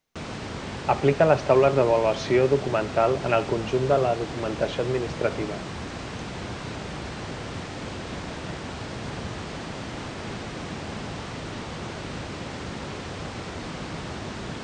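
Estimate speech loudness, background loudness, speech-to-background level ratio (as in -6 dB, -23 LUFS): -23.5 LUFS, -34.5 LUFS, 11.0 dB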